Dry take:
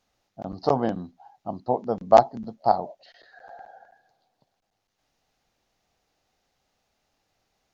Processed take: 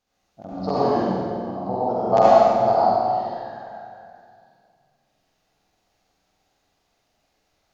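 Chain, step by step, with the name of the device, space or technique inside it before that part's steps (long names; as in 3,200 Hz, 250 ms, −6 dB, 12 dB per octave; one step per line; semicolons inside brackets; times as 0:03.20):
tunnel (flutter between parallel walls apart 8.1 metres, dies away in 0.6 s; convolution reverb RT60 2.2 s, pre-delay 64 ms, DRR −8.5 dB)
level −6 dB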